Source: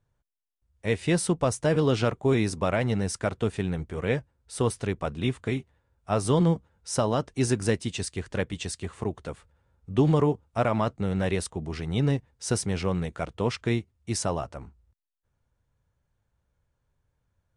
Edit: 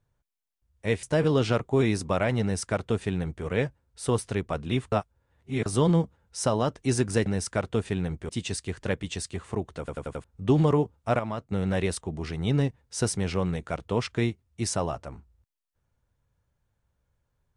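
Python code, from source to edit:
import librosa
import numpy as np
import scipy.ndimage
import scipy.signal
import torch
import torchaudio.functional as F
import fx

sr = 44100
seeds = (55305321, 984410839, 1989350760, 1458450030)

y = fx.edit(x, sr, fx.cut(start_s=1.03, length_s=0.52),
    fx.duplicate(start_s=2.94, length_s=1.03, to_s=7.78),
    fx.reverse_span(start_s=5.44, length_s=0.74),
    fx.stutter_over(start_s=9.28, slice_s=0.09, count=5),
    fx.clip_gain(start_s=10.68, length_s=0.33, db=-7.0), tone=tone)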